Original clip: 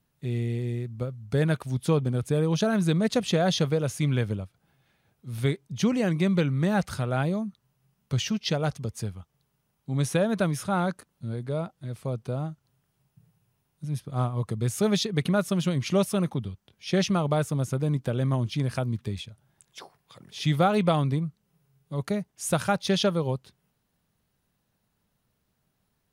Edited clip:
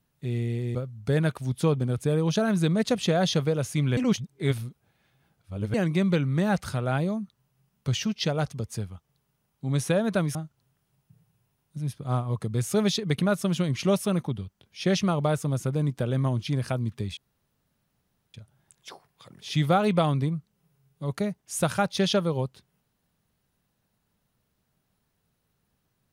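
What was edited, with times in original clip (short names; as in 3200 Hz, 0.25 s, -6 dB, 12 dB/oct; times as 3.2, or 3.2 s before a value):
0.75–1 cut
4.22–5.99 reverse
10.6–12.42 cut
19.24 insert room tone 1.17 s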